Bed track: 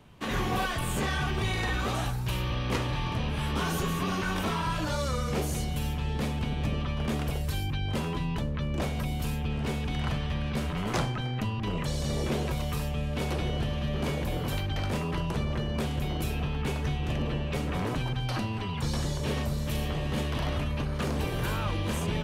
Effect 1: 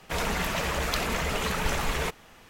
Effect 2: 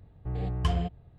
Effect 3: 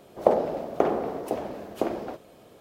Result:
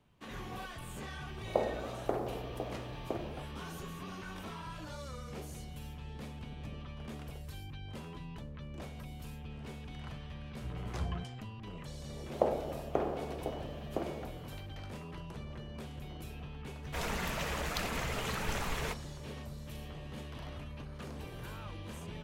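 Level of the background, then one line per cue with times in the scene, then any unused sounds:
bed track −14.5 dB
0:01.29: mix in 3 −11 dB + floating-point word with a short mantissa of 6 bits
0:10.36: mix in 2 −10 dB + three-band delay without the direct sound lows, mids, highs 110/240 ms, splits 810/3,200 Hz
0:12.15: mix in 3 −9.5 dB
0:16.83: mix in 1 −8 dB

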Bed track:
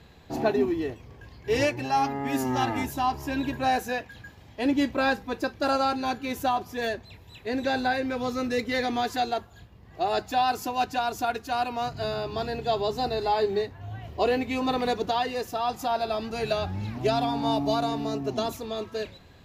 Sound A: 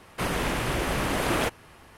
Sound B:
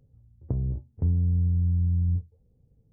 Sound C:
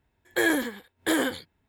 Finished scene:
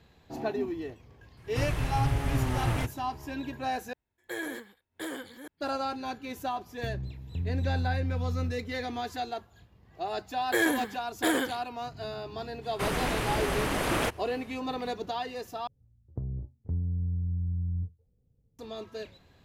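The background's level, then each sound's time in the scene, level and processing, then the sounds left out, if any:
bed track −7.5 dB
0:01.37: mix in A −10 dB + low shelf with overshoot 170 Hz +11.5 dB, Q 3
0:03.93: overwrite with C −13 dB + delay that plays each chunk backwards 516 ms, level −6 dB
0:06.33: mix in B −9 dB + four-comb reverb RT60 2.9 s, combs from 27 ms, DRR 7 dB
0:10.16: mix in C −2.5 dB
0:12.61: mix in A −2.5 dB, fades 0.05 s
0:15.67: overwrite with B −7 dB

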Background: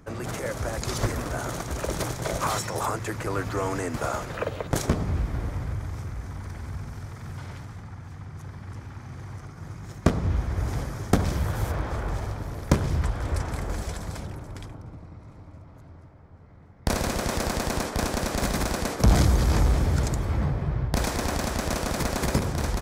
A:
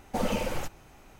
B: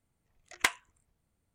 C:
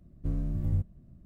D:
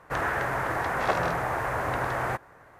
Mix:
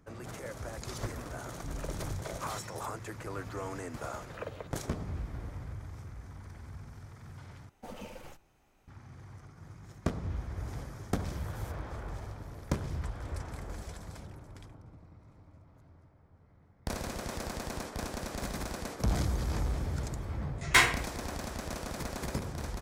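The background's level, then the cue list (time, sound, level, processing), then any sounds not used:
background −11 dB
0:01.39: mix in C −11 dB
0:07.69: overwrite with A −14.5 dB + one-sided soft clipper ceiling −24 dBFS
0:20.10: mix in B −3 dB + rectangular room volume 89 cubic metres, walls mixed, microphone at 2.5 metres
not used: D

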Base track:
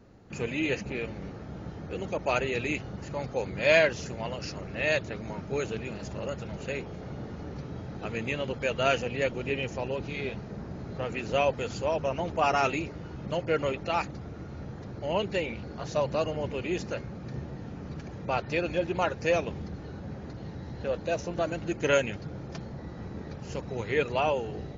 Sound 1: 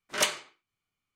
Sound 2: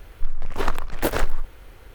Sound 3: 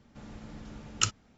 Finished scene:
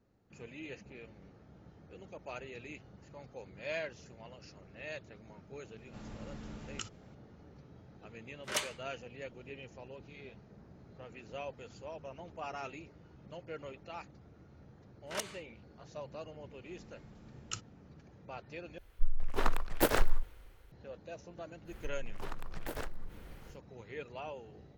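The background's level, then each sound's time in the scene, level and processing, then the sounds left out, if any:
base track −17 dB
0:05.78: mix in 3 −1.5 dB + downward compressor, threshold −36 dBFS
0:08.34: mix in 1 −8.5 dB
0:14.97: mix in 1 −10.5 dB + fake sidechain pumping 131 BPM, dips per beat 2, −17 dB, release 194 ms
0:16.50: mix in 3 −14 dB
0:18.78: overwrite with 2 −6.5 dB + multiband upward and downward expander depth 40%
0:21.64: mix in 2 −6.5 dB, fades 0.10 s + downward compressor 10 to 1, threshold −27 dBFS

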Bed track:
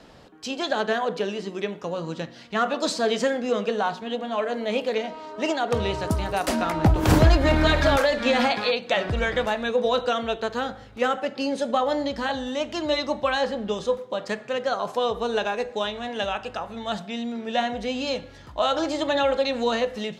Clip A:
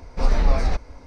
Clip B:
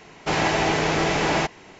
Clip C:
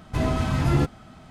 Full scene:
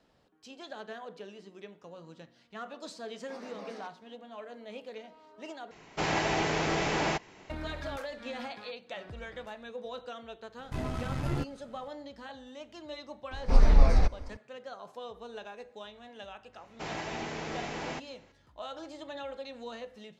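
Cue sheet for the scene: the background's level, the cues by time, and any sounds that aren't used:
bed track −18.5 dB
0:03.11: mix in A −17.5 dB + Butterworth high-pass 190 Hz 72 dB per octave
0:05.71: overwrite with B −7.5 dB
0:10.58: mix in C −8.5 dB + gain on one half-wave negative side −7 dB
0:13.31: mix in A −5 dB + low-shelf EQ 450 Hz +4 dB
0:16.53: mix in B −16 dB

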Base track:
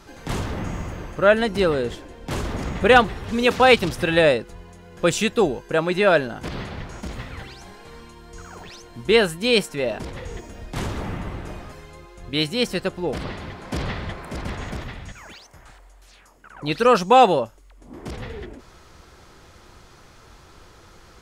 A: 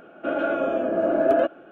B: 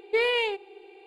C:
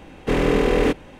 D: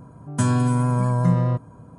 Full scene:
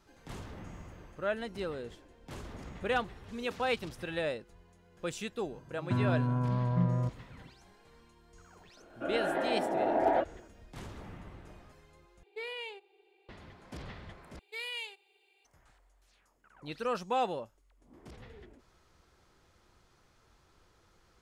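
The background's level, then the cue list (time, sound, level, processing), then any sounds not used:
base track −17.5 dB
0:05.52: mix in D −9.5 dB + high-frequency loss of the air 340 metres
0:08.77: mix in A −10.5 dB + delay with pitch and tempo change per echo 134 ms, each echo +2 semitones, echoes 3
0:12.23: overwrite with B −16.5 dB + spectral tilt +1.5 dB per octave
0:14.39: overwrite with B −2.5 dB + first difference
not used: C

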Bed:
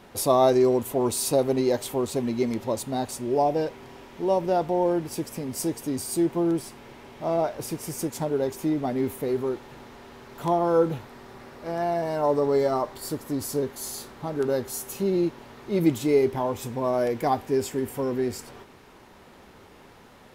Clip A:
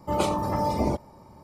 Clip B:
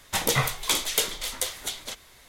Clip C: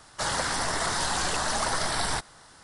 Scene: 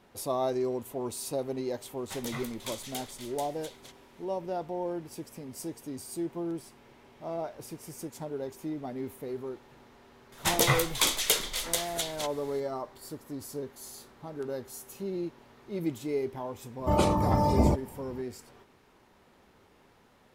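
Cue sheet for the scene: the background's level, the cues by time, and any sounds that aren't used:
bed −10.5 dB
0:01.97: mix in B −15.5 dB + wavefolder on the positive side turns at −10 dBFS
0:10.32: mix in B −1 dB
0:16.79: mix in A −1.5 dB + low-shelf EQ 180 Hz +8.5 dB
not used: C

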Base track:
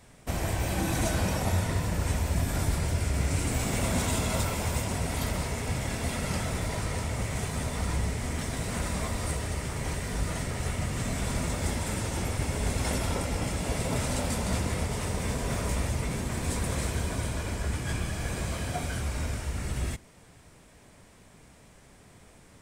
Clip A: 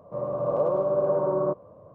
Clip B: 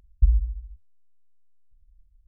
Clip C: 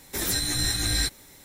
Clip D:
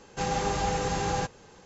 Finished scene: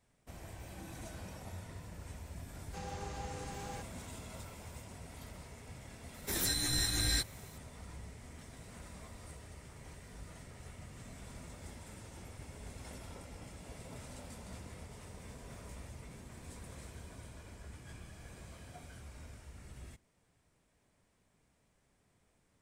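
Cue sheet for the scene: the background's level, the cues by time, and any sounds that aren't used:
base track −19.5 dB
0:02.56: mix in D −16.5 dB
0:06.14: mix in C −7 dB
not used: A, B

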